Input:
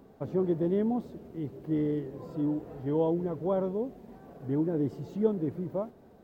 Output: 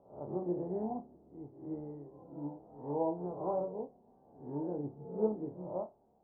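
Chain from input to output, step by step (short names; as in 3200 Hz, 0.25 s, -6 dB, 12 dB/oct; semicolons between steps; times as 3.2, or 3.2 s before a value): spectral swells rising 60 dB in 0.71 s; ladder low-pass 940 Hz, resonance 60%; flutter echo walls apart 4.8 m, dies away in 0.28 s; upward expander 1.5:1, over -50 dBFS; gain +1.5 dB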